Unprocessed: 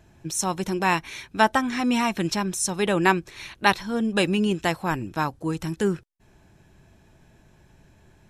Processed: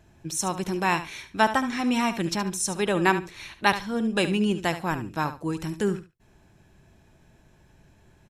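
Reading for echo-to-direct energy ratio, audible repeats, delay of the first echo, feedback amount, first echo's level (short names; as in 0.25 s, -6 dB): -12.0 dB, 2, 72 ms, 16%, -12.0 dB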